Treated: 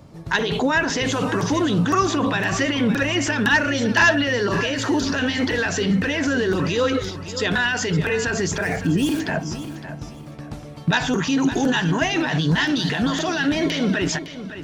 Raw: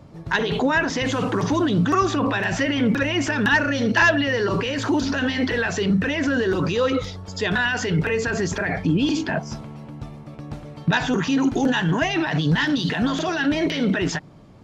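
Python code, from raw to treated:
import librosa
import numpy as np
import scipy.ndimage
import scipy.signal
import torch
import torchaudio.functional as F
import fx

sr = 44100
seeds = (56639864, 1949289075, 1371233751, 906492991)

y = fx.median_filter(x, sr, points=9, at=(8.6, 9.19), fade=0.02)
y = fx.high_shelf(y, sr, hz=5600.0, db=9.0)
y = fx.echo_feedback(y, sr, ms=560, feedback_pct=27, wet_db=-12.5)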